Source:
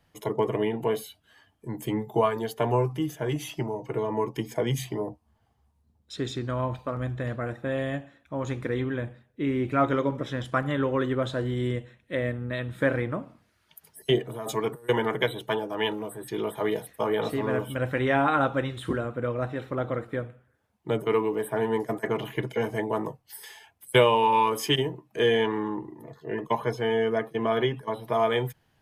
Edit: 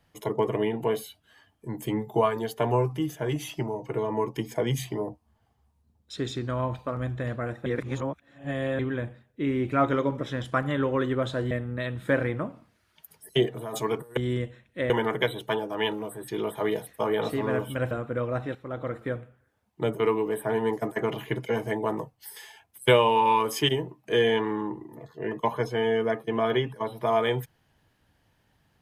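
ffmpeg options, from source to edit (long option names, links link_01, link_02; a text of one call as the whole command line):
ffmpeg -i in.wav -filter_complex "[0:a]asplit=8[link_01][link_02][link_03][link_04][link_05][link_06][link_07][link_08];[link_01]atrim=end=7.662[link_09];[link_02]atrim=start=7.658:end=8.792,asetpts=PTS-STARTPTS,areverse[link_10];[link_03]atrim=start=8.788:end=11.512[link_11];[link_04]atrim=start=12.238:end=14.902[link_12];[link_05]atrim=start=11.508:end=12.242[link_13];[link_06]atrim=start=14.898:end=17.912[link_14];[link_07]atrim=start=18.978:end=19.62,asetpts=PTS-STARTPTS,afade=type=out:start_time=0.638:duration=0.004:curve=hsin:silence=0.237137[link_15];[link_08]atrim=start=19.62,asetpts=PTS-STARTPTS,afade=type=in:duration=0.47:silence=0.237137[link_16];[link_09][link_10]acrossfade=duration=0.004:curve1=hsin:curve2=hsin[link_17];[link_17][link_11]acrossfade=duration=0.004:curve1=hsin:curve2=hsin[link_18];[link_18][link_12]acrossfade=duration=0.004:curve1=hsin:curve2=hsin[link_19];[link_19][link_13]acrossfade=duration=0.004:curve1=hsin:curve2=hsin[link_20];[link_20][link_14]acrossfade=duration=0.004:curve1=hsin:curve2=hsin[link_21];[link_15][link_16]concat=n=2:v=0:a=1[link_22];[link_21][link_22]acrossfade=duration=0.004:curve1=hsin:curve2=hsin" out.wav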